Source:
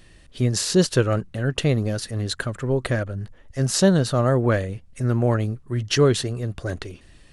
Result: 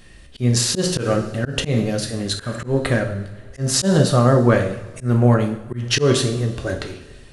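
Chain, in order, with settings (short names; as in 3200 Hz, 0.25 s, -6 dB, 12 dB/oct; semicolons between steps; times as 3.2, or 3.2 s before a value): two-slope reverb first 0.61 s, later 2.5 s, from -18 dB, DRR 3 dB; auto swell 0.134 s; gain +3.5 dB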